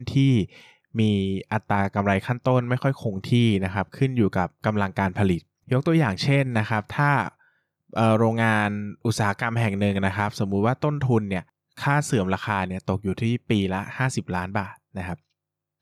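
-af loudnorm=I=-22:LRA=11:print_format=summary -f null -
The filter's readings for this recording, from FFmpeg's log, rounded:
Input Integrated:    -24.2 LUFS
Input True Peak:      -9.2 dBTP
Input LRA:             4.4 LU
Input Threshold:     -34.5 LUFS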